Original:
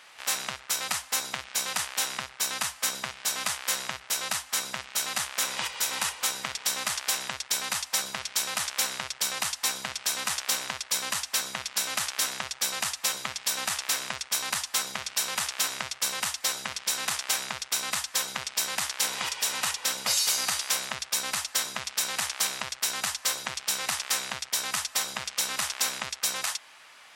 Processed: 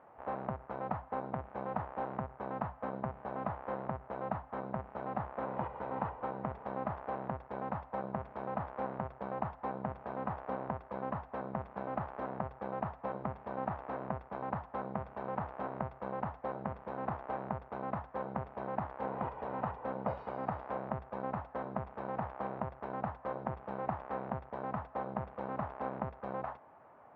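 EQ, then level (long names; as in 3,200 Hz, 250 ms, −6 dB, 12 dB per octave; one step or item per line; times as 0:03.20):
transistor ladder low-pass 1,000 Hz, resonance 25%
high-frequency loss of the air 90 metres
low-shelf EQ 260 Hz +9 dB
+7.5 dB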